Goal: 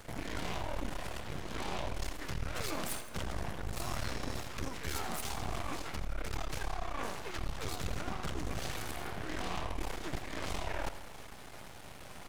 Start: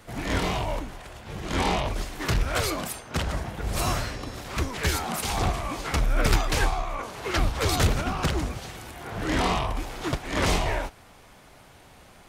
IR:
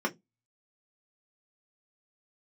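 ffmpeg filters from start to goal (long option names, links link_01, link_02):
-af "areverse,acompressor=threshold=-36dB:ratio=12,areverse,aeval=exprs='max(val(0),0)':channel_layout=same,aecho=1:1:83|166|249|332|415|498:0.224|0.128|0.0727|0.0415|0.0236|0.0135,volume=5dB"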